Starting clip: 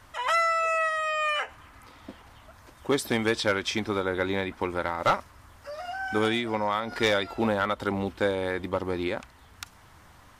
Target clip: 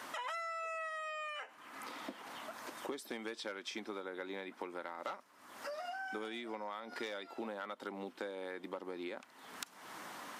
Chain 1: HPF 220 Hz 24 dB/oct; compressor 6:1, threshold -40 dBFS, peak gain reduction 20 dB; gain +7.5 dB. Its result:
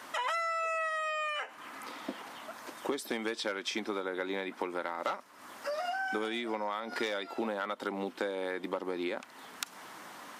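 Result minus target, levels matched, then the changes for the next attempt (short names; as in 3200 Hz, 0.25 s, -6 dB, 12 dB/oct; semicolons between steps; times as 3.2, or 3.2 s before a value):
compressor: peak gain reduction -8.5 dB
change: compressor 6:1, threshold -50 dBFS, peak gain reduction 28.5 dB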